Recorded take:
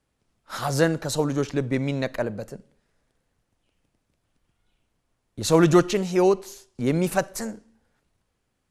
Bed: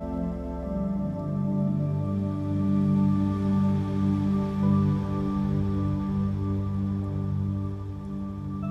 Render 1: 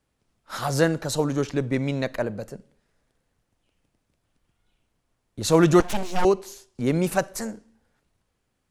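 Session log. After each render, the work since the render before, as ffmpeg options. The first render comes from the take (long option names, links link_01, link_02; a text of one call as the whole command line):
ffmpeg -i in.wav -filter_complex "[0:a]asettb=1/sr,asplit=3[link_01][link_02][link_03];[link_01]atrim=end=5.804[link_04];[link_02]atrim=start=5.8:end=6.25,asetpts=PTS-STARTPTS,afade=type=in:duration=0.004:curve=qsin,afade=type=out:start_time=0.446:duration=0.004:curve=qsin,aeval=exprs='abs(val(0))':channel_layout=same[link_05];[link_03]atrim=start=6.246[link_06];[link_04][link_05]acrossfade=duration=0.004:curve1=hsin:curve2=qsin[link_07];[link_07][link_06]acrossfade=duration=0.004:curve1=qsin:curve2=hsin" out.wav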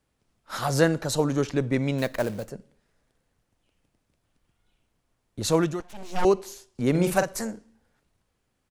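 ffmpeg -i in.wav -filter_complex "[0:a]asettb=1/sr,asplit=3[link_01][link_02][link_03];[link_01]atrim=end=1.984[link_04];[link_02]atrim=start=1.98:end=2.5,asetpts=PTS-STARTPTS,afade=type=in:duration=0.004:curve=qsin,afade=type=out:start_time=0.516:duration=0.004:curve=qsin,acrusher=bits=4:mode=log:mix=0:aa=0.000001[link_05];[link_03]atrim=start=2.496[link_06];[link_04][link_05]acrossfade=duration=0.004:curve1=hsin:curve2=qsin[link_07];[link_07][link_06]acrossfade=duration=0.004:curve1=qsin:curve2=hsin,asplit=3[link_08][link_09][link_10];[link_08]afade=type=out:start_time=6.94:duration=0.02[link_11];[link_09]asplit=2[link_12][link_13];[link_13]adelay=46,volume=-7dB[link_14];[link_12][link_14]amix=inputs=2:normalize=0,afade=type=in:start_time=6.94:duration=0.02,afade=type=out:start_time=7.4:duration=0.02[link_15];[link_10]afade=type=in:start_time=7.4:duration=0.02[link_16];[link_11][link_15][link_16]amix=inputs=3:normalize=0,asplit=3[link_17][link_18][link_19];[link_17]atrim=end=5.77,asetpts=PTS-STARTPTS,afade=type=out:start_time=5.4:duration=0.37:silence=0.141254[link_20];[link_18]atrim=start=5.77:end=5.95,asetpts=PTS-STARTPTS,volume=-17dB[link_21];[link_19]atrim=start=5.95,asetpts=PTS-STARTPTS,afade=type=in:duration=0.37:silence=0.141254[link_22];[link_20][link_21][link_22]concat=n=3:v=0:a=1" out.wav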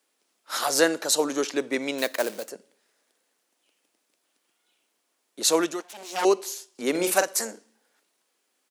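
ffmpeg -i in.wav -af "highpass=frequency=290:width=0.5412,highpass=frequency=290:width=1.3066,highshelf=frequency=2500:gain=9.5" out.wav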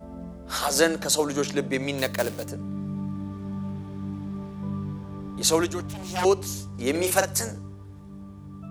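ffmpeg -i in.wav -i bed.wav -filter_complex "[1:a]volume=-9dB[link_01];[0:a][link_01]amix=inputs=2:normalize=0" out.wav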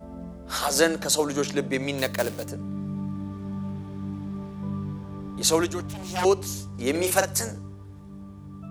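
ffmpeg -i in.wav -af anull out.wav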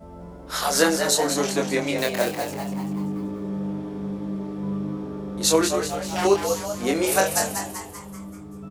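ffmpeg -i in.wav -filter_complex "[0:a]asplit=2[link_01][link_02];[link_02]adelay=25,volume=-3dB[link_03];[link_01][link_03]amix=inputs=2:normalize=0,asplit=7[link_04][link_05][link_06][link_07][link_08][link_09][link_10];[link_05]adelay=193,afreqshift=110,volume=-7dB[link_11];[link_06]adelay=386,afreqshift=220,volume=-12.8dB[link_12];[link_07]adelay=579,afreqshift=330,volume=-18.7dB[link_13];[link_08]adelay=772,afreqshift=440,volume=-24.5dB[link_14];[link_09]adelay=965,afreqshift=550,volume=-30.4dB[link_15];[link_10]adelay=1158,afreqshift=660,volume=-36.2dB[link_16];[link_04][link_11][link_12][link_13][link_14][link_15][link_16]amix=inputs=7:normalize=0" out.wav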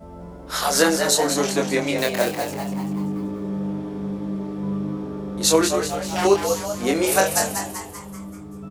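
ffmpeg -i in.wav -af "volume=2dB,alimiter=limit=-2dB:level=0:latency=1" out.wav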